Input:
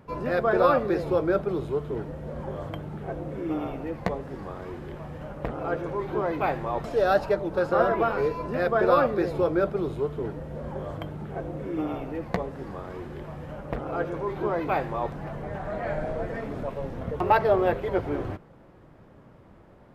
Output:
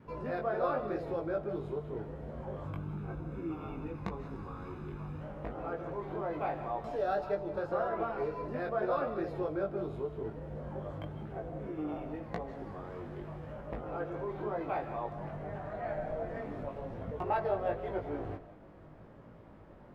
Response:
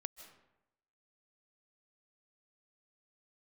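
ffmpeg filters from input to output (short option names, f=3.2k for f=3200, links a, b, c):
-filter_complex "[0:a]highshelf=f=4.7k:g=-8,asettb=1/sr,asplit=3[a][b][c];[a]atrim=end=2.644[d];[b]atrim=start=2.64:end=5.21,asetpts=PTS-STARTPTS,afade=t=in:d=0.004:c=qsin,afade=t=out:st=2.566:d=0.004:c=qsin,aecho=1:1:0.8:0.62,atrim=end_sample=113337[e];[c]atrim=start=5.206[f];[d][e]acrossfade=d=0.004:c1=hsin:c2=qsin[g];[g][f]acrossfade=d=0.004:c1=qsin:c2=hsin,adynamicequalizer=threshold=0.0141:dfrequency=710:dqfactor=3.5:tfrequency=710:tqfactor=3.5:attack=5:release=100:ratio=0.375:range=2.5:mode=boostabove:tftype=bell,acompressor=threshold=-47dB:ratio=1.5,flanger=delay=18:depth=2.2:speed=0.88[h];[1:a]atrim=start_sample=2205,afade=t=out:st=0.26:d=0.01,atrim=end_sample=11907[i];[h][i]afir=irnorm=-1:irlink=0,volume=5dB"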